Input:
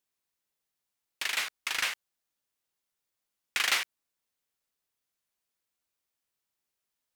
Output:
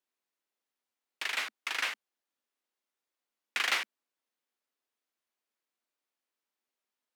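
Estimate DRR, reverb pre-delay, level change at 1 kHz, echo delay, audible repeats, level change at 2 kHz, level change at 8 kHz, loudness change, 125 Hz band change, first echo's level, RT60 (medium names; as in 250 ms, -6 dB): no reverb, no reverb, -0.5 dB, no echo, no echo, -1.5 dB, -7.0 dB, -2.5 dB, no reading, no echo, no reverb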